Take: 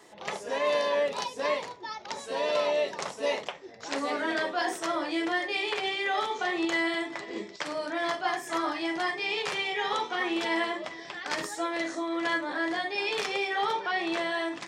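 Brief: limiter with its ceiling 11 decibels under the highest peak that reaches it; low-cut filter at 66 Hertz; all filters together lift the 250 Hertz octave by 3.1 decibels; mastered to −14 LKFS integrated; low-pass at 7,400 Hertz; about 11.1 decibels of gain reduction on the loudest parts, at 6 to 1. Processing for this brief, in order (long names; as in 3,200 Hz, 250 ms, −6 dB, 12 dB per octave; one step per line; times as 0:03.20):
high-pass filter 66 Hz
low-pass filter 7,400 Hz
parametric band 250 Hz +5 dB
downward compressor 6 to 1, threshold −35 dBFS
level +26.5 dB
brickwall limiter −5.5 dBFS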